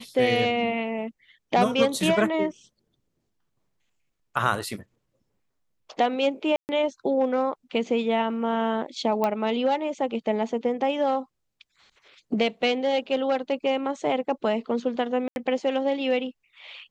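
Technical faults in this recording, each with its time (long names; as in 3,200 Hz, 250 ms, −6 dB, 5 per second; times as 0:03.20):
0:06.56–0:06.69: drop-out 129 ms
0:09.24: click −13 dBFS
0:15.28–0:15.36: drop-out 81 ms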